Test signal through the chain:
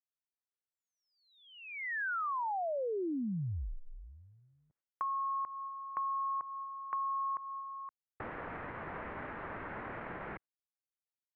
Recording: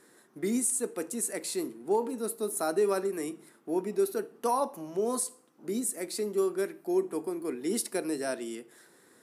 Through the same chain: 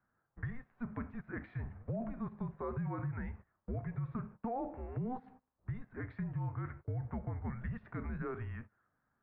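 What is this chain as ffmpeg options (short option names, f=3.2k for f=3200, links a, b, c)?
-af "agate=range=-20dB:threshold=-45dB:ratio=16:detection=peak,lowshelf=f=440:g=-8.5,alimiter=level_in=5dB:limit=-24dB:level=0:latency=1:release=20,volume=-5dB,acompressor=threshold=-38dB:ratio=6,highpass=f=290:t=q:w=0.5412,highpass=f=290:t=q:w=1.307,lowpass=f=2.2k:t=q:w=0.5176,lowpass=f=2.2k:t=q:w=0.7071,lowpass=f=2.2k:t=q:w=1.932,afreqshift=-250,volume=4dB"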